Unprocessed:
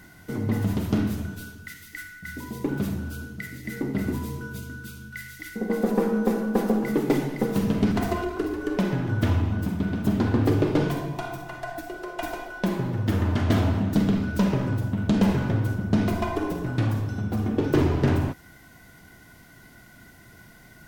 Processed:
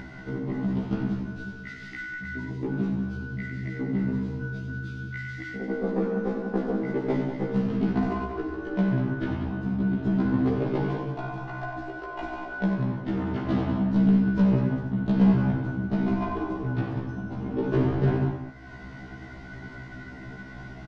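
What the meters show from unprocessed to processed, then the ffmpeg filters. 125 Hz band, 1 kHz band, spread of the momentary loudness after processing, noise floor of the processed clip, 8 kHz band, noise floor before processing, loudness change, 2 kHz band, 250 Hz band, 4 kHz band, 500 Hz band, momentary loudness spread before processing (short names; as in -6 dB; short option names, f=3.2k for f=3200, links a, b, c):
-2.0 dB, -2.5 dB, 18 LU, -42 dBFS, under -15 dB, -51 dBFS, -2.0 dB, -1.0 dB, -0.5 dB, n/a, -2.5 dB, 14 LU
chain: -af "lowpass=f=5.4k:w=0.5412,lowpass=f=5.4k:w=1.3066,highshelf=f=2.1k:g=-11,bandreject=f=530:w=16,acompressor=mode=upward:threshold=-27dB:ratio=2.5,aecho=1:1:93.29|189.5:0.355|0.355,afftfilt=real='re*1.73*eq(mod(b,3),0)':imag='im*1.73*eq(mod(b,3),0)':win_size=2048:overlap=0.75"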